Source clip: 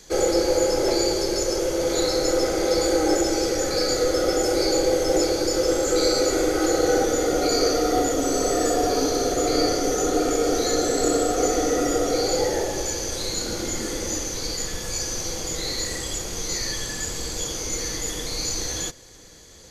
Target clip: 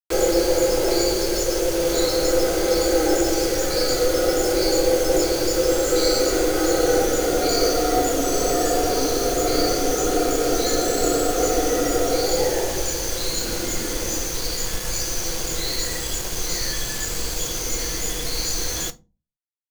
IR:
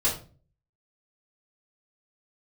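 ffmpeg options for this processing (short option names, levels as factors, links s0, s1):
-filter_complex "[0:a]acrusher=bits=4:mix=0:aa=0.000001,asplit=2[s0][s1];[1:a]atrim=start_sample=2205,asetrate=66150,aresample=44100[s2];[s1][s2]afir=irnorm=-1:irlink=0,volume=0.15[s3];[s0][s3]amix=inputs=2:normalize=0"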